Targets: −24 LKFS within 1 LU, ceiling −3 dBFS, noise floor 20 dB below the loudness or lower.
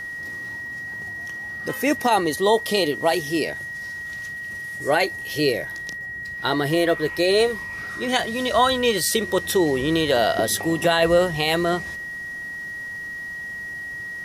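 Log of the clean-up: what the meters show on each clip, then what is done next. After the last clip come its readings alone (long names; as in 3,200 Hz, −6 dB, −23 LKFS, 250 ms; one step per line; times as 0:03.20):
crackle rate 21 per second; interfering tone 1,900 Hz; level of the tone −30 dBFS; integrated loudness −23.0 LKFS; sample peak −6.0 dBFS; target loudness −24.0 LKFS
→ click removal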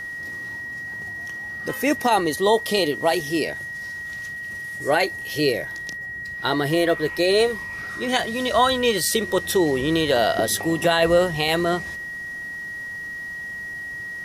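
crackle rate 0.14 per second; interfering tone 1,900 Hz; level of the tone −30 dBFS
→ notch filter 1,900 Hz, Q 30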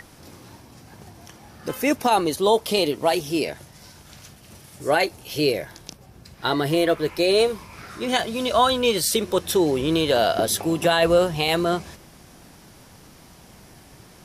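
interfering tone none found; integrated loudness −21.5 LKFS; sample peak −6.5 dBFS; target loudness −24.0 LKFS
→ level −2.5 dB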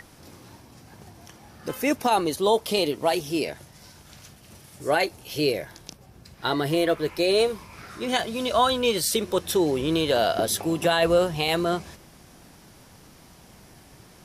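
integrated loudness −24.0 LKFS; sample peak −9.0 dBFS; background noise floor −51 dBFS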